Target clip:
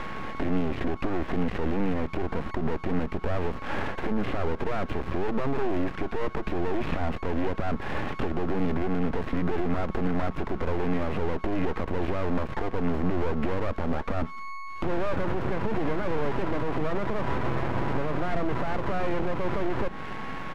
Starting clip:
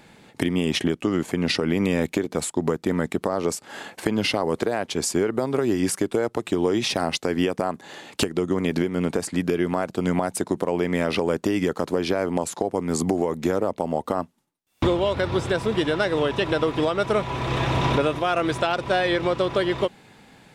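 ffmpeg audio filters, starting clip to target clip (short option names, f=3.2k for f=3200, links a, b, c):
-filter_complex "[0:a]asplit=2[a][b];[b]highpass=f=720:p=1,volume=33dB,asoftclip=type=tanh:threshold=-4.5dB[c];[a][c]amix=inputs=2:normalize=0,lowpass=f=1.4k:p=1,volume=-6dB,aresample=16000,aresample=44100,acrossover=split=150|2500[d][e][f];[f]acrusher=samples=37:mix=1:aa=0.000001[g];[d][e][g]amix=inputs=3:normalize=0,aeval=exprs='val(0)+0.0355*sin(2*PI*1100*n/s)':c=same,acrossover=split=740|3400[h][i][j];[h]acompressor=threshold=-16dB:ratio=4[k];[i]acompressor=threshold=-33dB:ratio=4[l];[j]acompressor=threshold=-54dB:ratio=4[m];[k][l][m]amix=inputs=3:normalize=0,aeval=exprs='max(val(0),0)':c=same,aemphasis=mode=reproduction:type=50kf,areverse,acompressor=mode=upward:threshold=-30dB:ratio=2.5,areverse,alimiter=limit=-15.5dB:level=0:latency=1:release=172,equalizer=f=590:t=o:w=2.5:g=-7.5,volume=3.5dB"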